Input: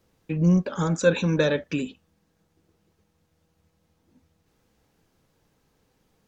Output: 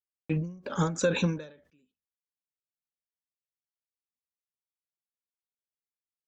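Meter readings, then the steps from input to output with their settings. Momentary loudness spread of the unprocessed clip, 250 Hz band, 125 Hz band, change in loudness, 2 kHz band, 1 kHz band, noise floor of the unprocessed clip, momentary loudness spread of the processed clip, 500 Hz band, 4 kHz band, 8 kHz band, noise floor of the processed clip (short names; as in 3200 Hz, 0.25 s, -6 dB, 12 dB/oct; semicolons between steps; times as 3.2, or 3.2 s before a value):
10 LU, -8.5 dB, -7.5 dB, -6.0 dB, -7.0 dB, -2.5 dB, -71 dBFS, 11 LU, -8.0 dB, -5.0 dB, n/a, under -85 dBFS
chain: gate -51 dBFS, range -50 dB; ending taper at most 110 dB/s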